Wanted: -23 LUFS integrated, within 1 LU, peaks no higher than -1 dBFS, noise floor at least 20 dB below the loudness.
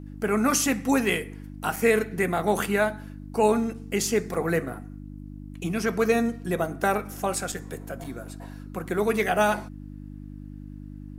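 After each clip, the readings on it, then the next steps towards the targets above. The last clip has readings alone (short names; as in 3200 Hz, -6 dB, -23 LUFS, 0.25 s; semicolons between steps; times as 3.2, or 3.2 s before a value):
dropouts 4; longest dropout 4.9 ms; hum 50 Hz; harmonics up to 300 Hz; hum level -37 dBFS; loudness -25.5 LUFS; peak -7.5 dBFS; loudness target -23.0 LUFS
-> interpolate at 1.76/4.34/7.52/8.04, 4.9 ms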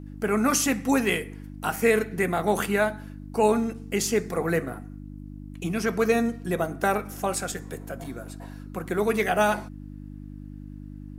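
dropouts 0; hum 50 Hz; harmonics up to 300 Hz; hum level -37 dBFS
-> de-hum 50 Hz, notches 6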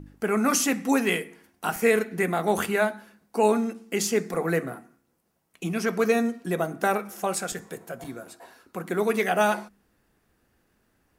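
hum none; loudness -25.5 LUFS; peak -8.0 dBFS; loudness target -23.0 LUFS
-> gain +2.5 dB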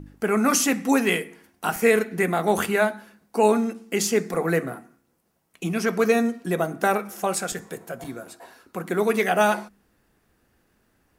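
loudness -23.0 LUFS; peak -5.5 dBFS; noise floor -68 dBFS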